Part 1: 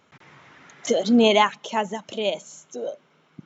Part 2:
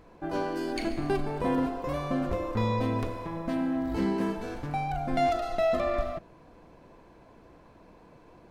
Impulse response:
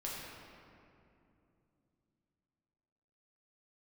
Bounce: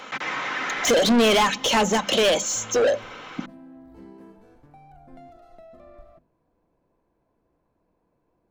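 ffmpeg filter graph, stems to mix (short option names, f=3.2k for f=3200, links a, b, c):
-filter_complex "[0:a]aecho=1:1:3.9:0.39,acrossover=split=470|3300[a][b][c];[a]acompressor=threshold=-19dB:ratio=4[d];[b]acompressor=threshold=-34dB:ratio=4[e];[c]acompressor=threshold=-34dB:ratio=4[f];[d][e][f]amix=inputs=3:normalize=0,asplit=2[g][h];[h]highpass=f=720:p=1,volume=30dB,asoftclip=type=tanh:threshold=-11dB[i];[g][i]amix=inputs=2:normalize=0,lowpass=f=4.6k:p=1,volume=-6dB,volume=0dB[j];[1:a]equalizer=f=3.7k:w=0.41:g=-7.5,acrossover=split=370[k][l];[l]acompressor=threshold=-31dB:ratio=6[m];[k][m]amix=inputs=2:normalize=0,volume=-16dB[n];[j][n]amix=inputs=2:normalize=0,bandreject=f=50:t=h:w=6,bandreject=f=100:t=h:w=6,bandreject=f=150:t=h:w=6,bandreject=f=200:t=h:w=6,bandreject=f=250:t=h:w=6"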